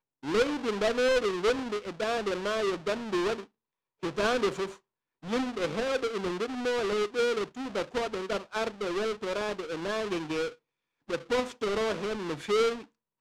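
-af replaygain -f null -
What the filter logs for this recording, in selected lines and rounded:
track_gain = +9.8 dB
track_peak = 0.098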